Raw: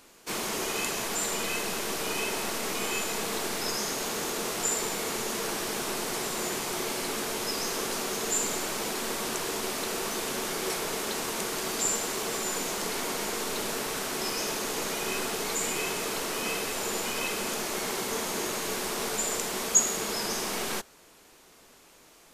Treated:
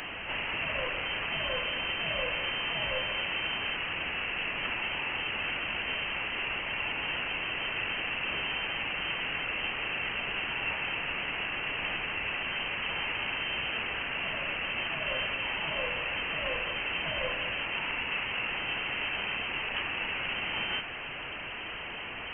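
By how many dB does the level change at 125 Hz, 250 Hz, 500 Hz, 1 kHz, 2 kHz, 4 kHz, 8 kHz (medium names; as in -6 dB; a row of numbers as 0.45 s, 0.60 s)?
-1.0 dB, -9.0 dB, -7.0 dB, -3.5 dB, +5.0 dB, +1.0 dB, under -40 dB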